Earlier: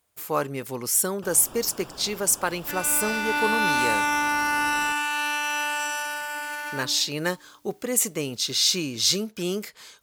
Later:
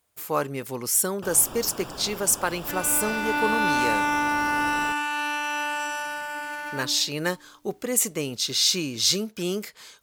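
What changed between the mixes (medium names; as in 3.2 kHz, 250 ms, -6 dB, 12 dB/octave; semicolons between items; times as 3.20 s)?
first sound +5.0 dB; second sound: add tilt EQ -2 dB/octave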